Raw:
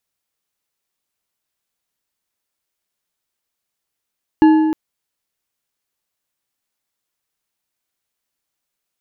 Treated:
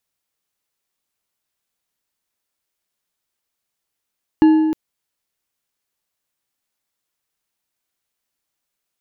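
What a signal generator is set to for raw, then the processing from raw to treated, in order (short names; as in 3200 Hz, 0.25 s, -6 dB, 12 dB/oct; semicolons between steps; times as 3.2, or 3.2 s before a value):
metal hit bar, length 0.31 s, lowest mode 314 Hz, decay 1.68 s, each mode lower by 10 dB, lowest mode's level -5 dB
dynamic EQ 1200 Hz, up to -8 dB, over -31 dBFS, Q 0.77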